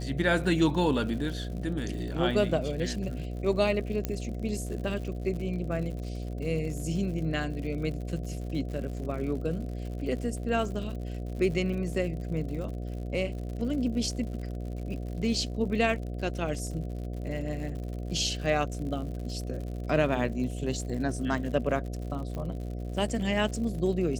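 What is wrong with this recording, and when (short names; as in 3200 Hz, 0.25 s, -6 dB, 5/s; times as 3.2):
buzz 60 Hz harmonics 12 -35 dBFS
crackle 100/s -38 dBFS
4.05 pop -15 dBFS
22.35 pop -25 dBFS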